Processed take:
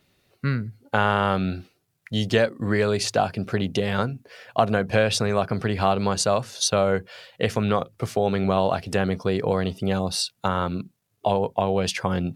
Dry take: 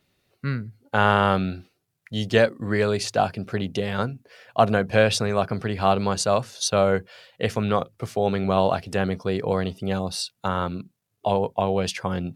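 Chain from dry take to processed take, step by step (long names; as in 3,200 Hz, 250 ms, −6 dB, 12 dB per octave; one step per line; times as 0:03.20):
downward compressor 2 to 1, threshold −24 dBFS, peak gain reduction 7 dB
level +4 dB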